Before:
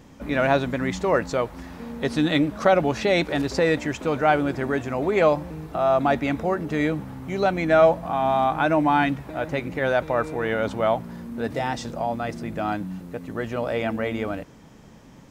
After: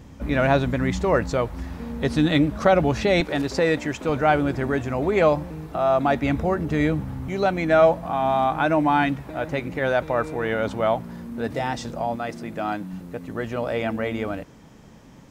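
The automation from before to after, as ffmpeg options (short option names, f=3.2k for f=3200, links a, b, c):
-af "asetnsamples=n=441:p=0,asendcmd='3.2 equalizer g -0.5;4.09 equalizer g 7.5;5.45 equalizer g 1.5;6.23 equalizer g 11.5;7.28 equalizer g 1.5;12.16 equalizer g -8.5;12.93 equalizer g 1',equalizer=f=66:t=o:w=2.1:g=11"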